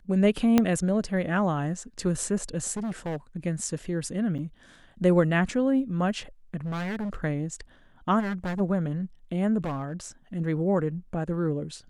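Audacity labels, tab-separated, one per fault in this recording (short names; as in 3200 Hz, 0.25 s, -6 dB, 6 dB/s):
0.580000	0.580000	pop -7 dBFS
2.760000	3.160000	clipped -28 dBFS
4.380000	4.390000	gap 7.7 ms
6.650000	7.160000	clipped -28.5 dBFS
8.190000	8.610000	clipped -27 dBFS
9.640000	10.060000	clipped -27 dBFS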